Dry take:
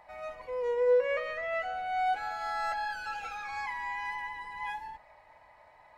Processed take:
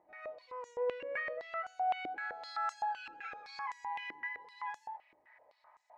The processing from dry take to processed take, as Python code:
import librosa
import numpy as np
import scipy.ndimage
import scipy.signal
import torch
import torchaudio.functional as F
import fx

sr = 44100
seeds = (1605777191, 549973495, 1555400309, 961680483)

y = fx.filter_held_bandpass(x, sr, hz=7.8, low_hz=320.0, high_hz=6600.0)
y = F.gain(torch.from_numpy(y), 4.5).numpy()